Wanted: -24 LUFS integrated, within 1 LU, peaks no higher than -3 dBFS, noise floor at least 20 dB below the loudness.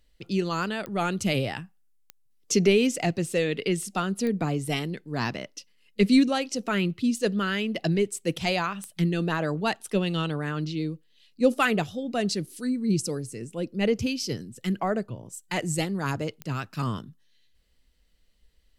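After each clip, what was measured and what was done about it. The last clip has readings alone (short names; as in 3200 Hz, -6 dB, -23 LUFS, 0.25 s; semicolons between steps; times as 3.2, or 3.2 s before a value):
clicks 5; loudness -27.0 LUFS; peak -9.0 dBFS; loudness target -24.0 LUFS
-> de-click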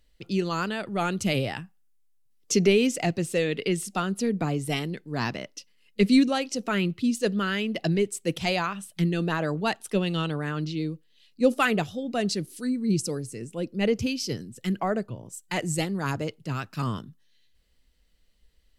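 clicks 0; loudness -27.0 LUFS; peak -9.0 dBFS; loudness target -24.0 LUFS
-> gain +3 dB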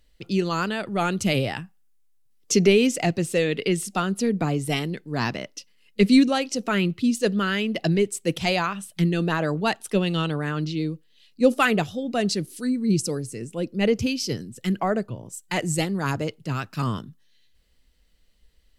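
loudness -24.0 LUFS; peak -6.0 dBFS; noise floor -60 dBFS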